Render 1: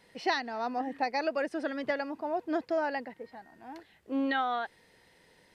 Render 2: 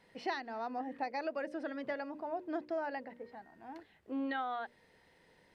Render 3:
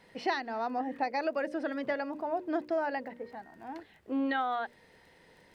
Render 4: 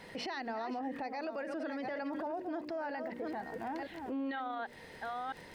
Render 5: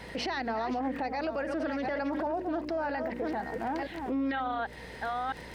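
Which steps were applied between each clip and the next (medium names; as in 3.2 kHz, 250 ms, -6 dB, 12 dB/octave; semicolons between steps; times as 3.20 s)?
treble shelf 3.6 kHz -8.5 dB; hum notches 60/120/180/240/300/360/420/480/540/600 Hz; in parallel at +1.5 dB: compression, threshold -39 dBFS, peak gain reduction 14 dB; on the sum: trim -9 dB
crackle 20 per s -57 dBFS; trim +6 dB
chunks repeated in reverse 484 ms, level -11.5 dB; compression, threshold -38 dBFS, peak gain reduction 12.5 dB; peak limiter -40 dBFS, peak gain reduction 12 dB; trim +8.5 dB
hum 60 Hz, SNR 19 dB; loudspeaker Doppler distortion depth 0.16 ms; trim +6.5 dB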